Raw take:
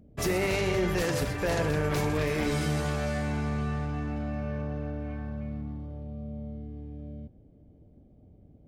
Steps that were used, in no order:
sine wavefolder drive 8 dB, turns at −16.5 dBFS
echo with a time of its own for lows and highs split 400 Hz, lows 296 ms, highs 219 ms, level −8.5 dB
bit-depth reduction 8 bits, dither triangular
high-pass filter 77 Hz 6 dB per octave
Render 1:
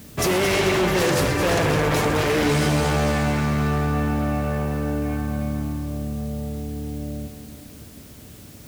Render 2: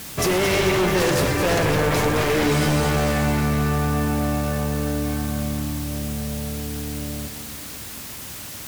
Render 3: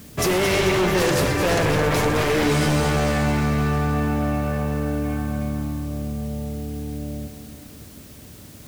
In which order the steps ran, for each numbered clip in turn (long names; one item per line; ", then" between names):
sine wavefolder, then echo with a time of its own for lows and highs, then bit-depth reduction, then high-pass filter
high-pass filter, then bit-depth reduction, then sine wavefolder, then echo with a time of its own for lows and highs
high-pass filter, then sine wavefolder, then bit-depth reduction, then echo with a time of its own for lows and highs